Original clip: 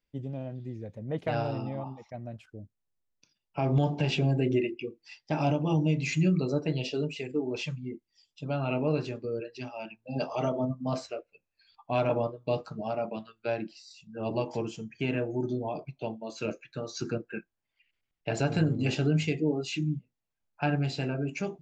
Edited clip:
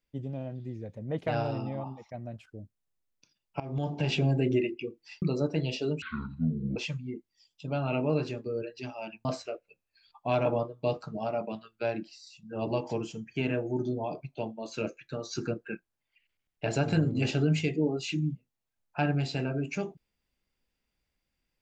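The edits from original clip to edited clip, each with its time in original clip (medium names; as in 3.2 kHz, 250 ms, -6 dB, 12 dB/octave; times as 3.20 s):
3.60–4.13 s: fade in, from -17.5 dB
5.22–6.34 s: delete
7.14–7.54 s: speed 54%
10.03–10.89 s: delete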